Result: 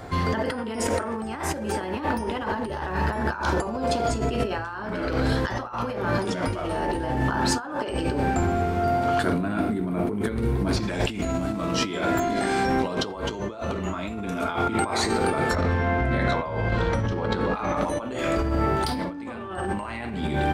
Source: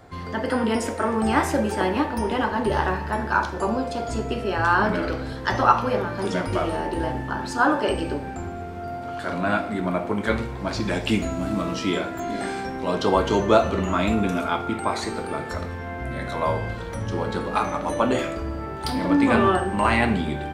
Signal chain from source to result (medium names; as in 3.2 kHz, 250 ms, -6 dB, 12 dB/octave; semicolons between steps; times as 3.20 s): 9.22–10.77 s: time-frequency box 490–8400 Hz -9 dB; 15.55–17.77 s: distance through air 100 m; compressor with a negative ratio -31 dBFS, ratio -1; trim +4 dB